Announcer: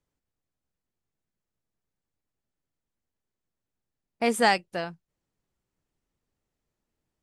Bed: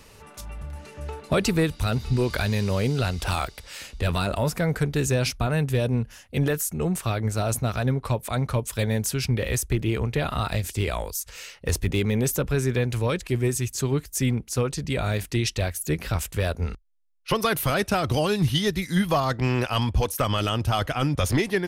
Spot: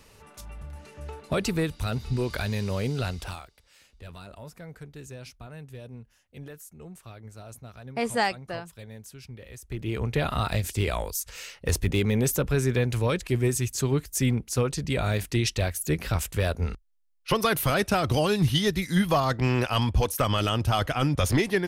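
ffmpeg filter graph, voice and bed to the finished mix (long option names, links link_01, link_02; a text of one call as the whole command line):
ffmpeg -i stem1.wav -i stem2.wav -filter_complex "[0:a]adelay=3750,volume=-3.5dB[link_01];[1:a]volume=14dB,afade=type=out:start_time=3.11:duration=0.32:silence=0.188365,afade=type=in:start_time=9.61:duration=0.57:silence=0.11885[link_02];[link_01][link_02]amix=inputs=2:normalize=0" out.wav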